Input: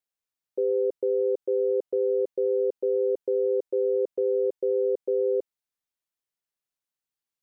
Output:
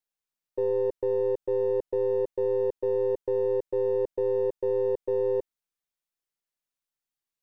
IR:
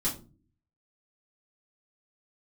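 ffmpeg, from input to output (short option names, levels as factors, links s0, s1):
-af "aeval=exprs='if(lt(val(0),0),0.708*val(0),val(0))':c=same"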